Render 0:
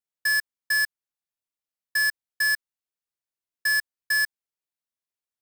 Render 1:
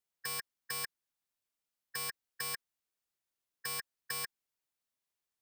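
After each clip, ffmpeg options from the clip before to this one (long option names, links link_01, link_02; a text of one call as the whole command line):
ffmpeg -i in.wav -filter_complex "[0:a]afftfilt=real='re*lt(hypot(re,im),0.224)':imag='im*lt(hypot(re,im),0.224)':win_size=1024:overlap=0.75,acrossover=split=900|4300[link_01][link_02][link_03];[link_03]alimiter=level_in=10dB:limit=-24dB:level=0:latency=1,volume=-10dB[link_04];[link_01][link_02][link_04]amix=inputs=3:normalize=0,volume=2dB" out.wav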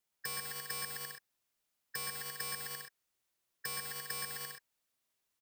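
ffmpeg -i in.wav -filter_complex "[0:a]asplit=2[link_01][link_02];[link_02]aecho=0:1:120|204|262.8|304|332.8:0.631|0.398|0.251|0.158|0.1[link_03];[link_01][link_03]amix=inputs=2:normalize=0,acrossover=split=690|7700[link_04][link_05][link_06];[link_04]acompressor=threshold=-55dB:ratio=4[link_07];[link_05]acompressor=threshold=-46dB:ratio=4[link_08];[link_06]acompressor=threshold=-45dB:ratio=4[link_09];[link_07][link_08][link_09]amix=inputs=3:normalize=0,volume=4dB" out.wav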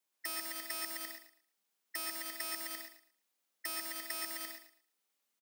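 ffmpeg -i in.wav -af "afreqshift=180,aecho=1:1:112|224|336:0.266|0.0639|0.0153" out.wav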